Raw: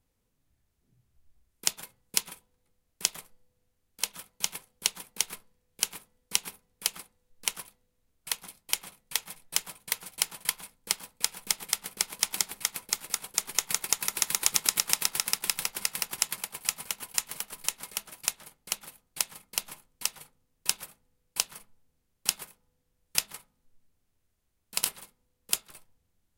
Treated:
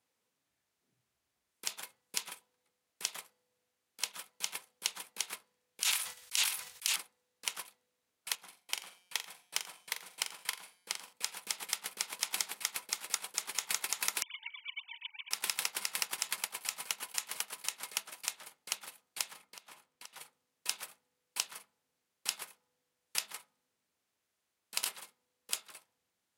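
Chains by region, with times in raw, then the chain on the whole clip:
0:05.82–0:06.96: guitar amp tone stack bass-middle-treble 10-0-10 + level that may fall only so fast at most 67 dB per second
0:08.35–0:11.13: high-shelf EQ 3,900 Hz −4.5 dB + tuned comb filter 180 Hz, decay 1 s, mix 40% + flutter between parallel walls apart 7.4 metres, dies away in 0.26 s
0:14.22–0:15.31: three sine waves on the formant tracks + formant resonators in series i + parametric band 2,400 Hz −5.5 dB 0.23 octaves
0:19.33–0:20.13: high-shelf EQ 5,300 Hz −6.5 dB + downward compressor, threshold −47 dBFS
whole clip: meter weighting curve A; brickwall limiter −13 dBFS

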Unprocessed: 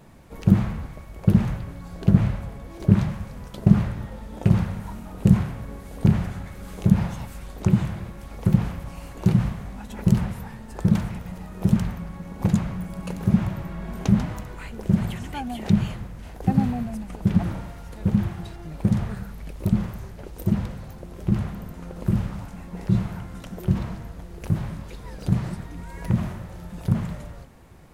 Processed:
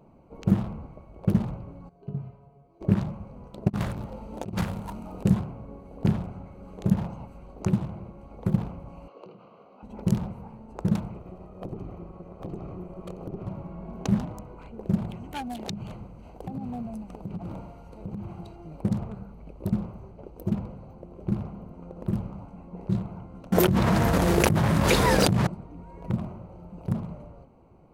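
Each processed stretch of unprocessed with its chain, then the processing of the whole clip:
0:01.89–0:02.81: low-shelf EQ 75 Hz −6.5 dB + tuned comb filter 140 Hz, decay 0.26 s, harmonics odd, mix 90%
0:03.68–0:05.23: high-shelf EQ 2,200 Hz +10.5 dB + compressor whose output falls as the input rises −22 dBFS, ratio −0.5
0:09.08–0:09.83: downward compressor 2 to 1, threshold −35 dBFS + loudspeaker in its box 450–5,400 Hz, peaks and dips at 470 Hz +6 dB, 840 Hz −5 dB, 1,200 Hz +5 dB, 1,800 Hz −6 dB, 2,900 Hz +6 dB, 4,300 Hz +4 dB
0:11.14–0:13.47: lower of the sound and its delayed copy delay 1.6 ms + downward compressor, threshold −26 dBFS
0:15.31–0:18.81: high-shelf EQ 2,800 Hz +8.5 dB + downward compressor 16 to 1, threshold −24 dBFS
0:23.52–0:25.47: high-pass filter 58 Hz 24 dB per octave + envelope flattener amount 100%
whole clip: adaptive Wiener filter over 25 samples; low-shelf EQ 170 Hz −10.5 dB

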